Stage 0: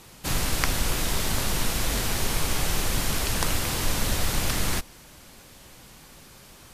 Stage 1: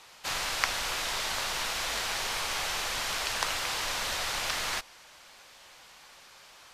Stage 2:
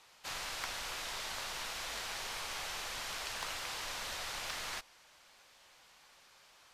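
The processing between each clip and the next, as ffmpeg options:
ffmpeg -i in.wav -filter_complex "[0:a]acrossover=split=570 6700:gain=0.1 1 0.251[link_01][link_02][link_03];[link_01][link_02][link_03]amix=inputs=3:normalize=0" out.wav
ffmpeg -i in.wav -af "volume=19.5dB,asoftclip=hard,volume=-19.5dB,volume=-9dB" out.wav

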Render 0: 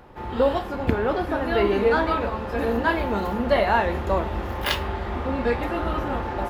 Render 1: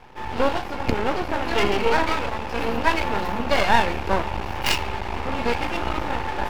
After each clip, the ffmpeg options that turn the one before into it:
ffmpeg -i in.wav -af "superequalizer=9b=2:12b=3.16:14b=2.24,aeval=exprs='max(val(0),0)':channel_layout=same,volume=2.5dB" out.wav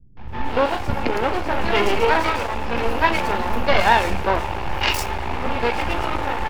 ffmpeg -i in.wav -filter_complex "[0:a]acrossover=split=220|5100[link_01][link_02][link_03];[link_02]adelay=170[link_04];[link_03]adelay=280[link_05];[link_01][link_04][link_05]amix=inputs=3:normalize=0,volume=3dB" out.wav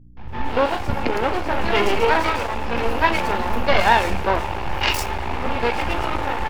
ffmpeg -i in.wav -af "aeval=exprs='val(0)+0.00447*(sin(2*PI*60*n/s)+sin(2*PI*2*60*n/s)/2+sin(2*PI*3*60*n/s)/3+sin(2*PI*4*60*n/s)/4+sin(2*PI*5*60*n/s)/5)':channel_layout=same" out.wav

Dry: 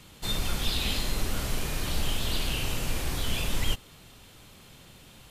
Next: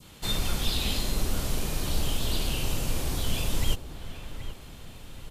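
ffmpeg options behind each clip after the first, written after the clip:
ffmpeg -i in.wav -filter_complex "[0:a]asplit=2[link_01][link_02];[link_02]adelay=778,lowpass=frequency=1600:poles=1,volume=-12dB,asplit=2[link_03][link_04];[link_04]adelay=778,lowpass=frequency=1600:poles=1,volume=0.48,asplit=2[link_05][link_06];[link_06]adelay=778,lowpass=frequency=1600:poles=1,volume=0.48,asplit=2[link_07][link_08];[link_08]adelay=778,lowpass=frequency=1600:poles=1,volume=0.48,asplit=2[link_09][link_10];[link_10]adelay=778,lowpass=frequency=1600:poles=1,volume=0.48[link_11];[link_01][link_03][link_05][link_07][link_09][link_11]amix=inputs=6:normalize=0,adynamicequalizer=threshold=0.00398:dfrequency=1900:dqfactor=0.87:tfrequency=1900:tqfactor=0.87:attack=5:release=100:ratio=0.375:range=3:mode=cutabove:tftype=bell,volume=1.5dB" out.wav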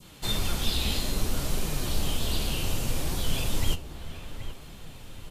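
ffmpeg -i in.wav -af "flanger=delay=5:depth=9.9:regen=65:speed=0.63:shape=triangular,volume=4.5dB" out.wav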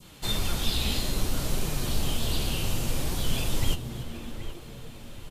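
ffmpeg -i in.wav -filter_complex "[0:a]asplit=6[link_01][link_02][link_03][link_04][link_05][link_06];[link_02]adelay=283,afreqshift=110,volume=-16dB[link_07];[link_03]adelay=566,afreqshift=220,volume=-21.8dB[link_08];[link_04]adelay=849,afreqshift=330,volume=-27.7dB[link_09];[link_05]adelay=1132,afreqshift=440,volume=-33.5dB[link_10];[link_06]adelay=1415,afreqshift=550,volume=-39.4dB[link_11];[link_01][link_07][link_08][link_09][link_10][link_11]amix=inputs=6:normalize=0" out.wav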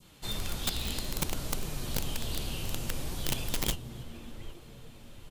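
ffmpeg -i in.wav -af "aeval=exprs='(mod(6.68*val(0)+1,2)-1)/6.68':channel_layout=same,volume=-7dB" out.wav

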